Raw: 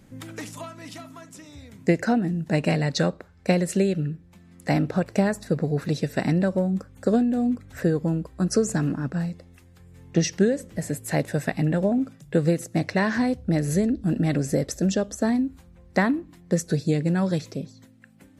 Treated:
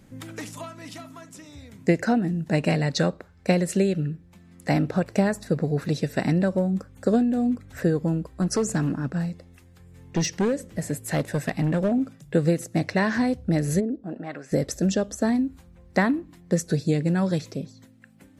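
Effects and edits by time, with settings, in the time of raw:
8.42–11.92 hard clip -18 dBFS
13.79–14.51 band-pass 320 Hz -> 1800 Hz, Q 1.3

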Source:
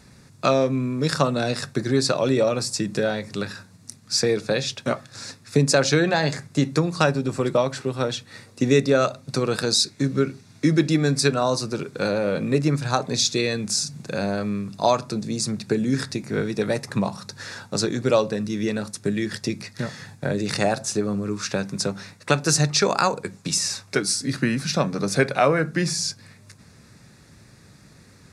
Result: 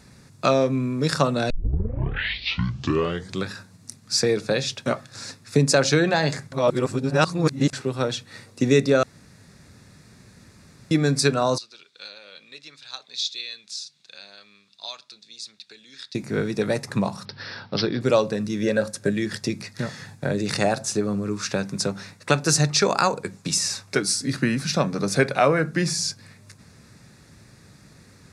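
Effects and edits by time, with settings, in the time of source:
1.5 tape start 2.01 s
6.52–7.73 reverse
9.03–10.91 room tone
11.58–16.15 band-pass 3600 Hz, Q 3.3
17.25–18.01 careless resampling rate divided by 4×, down none, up filtered
18.62–19.11 small resonant body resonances 550/1600 Hz, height 14 dB

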